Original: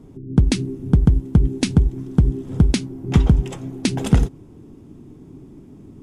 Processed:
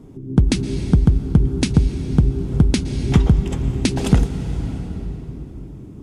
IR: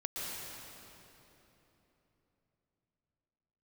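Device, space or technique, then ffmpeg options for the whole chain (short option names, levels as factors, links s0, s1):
ducked reverb: -filter_complex "[0:a]asplit=3[s0][s1][s2];[1:a]atrim=start_sample=2205[s3];[s1][s3]afir=irnorm=-1:irlink=0[s4];[s2]apad=whole_len=265890[s5];[s4][s5]sidechaincompress=threshold=0.141:ratio=8:attack=37:release=878,volume=0.562[s6];[s0][s6]amix=inputs=2:normalize=0,volume=0.891"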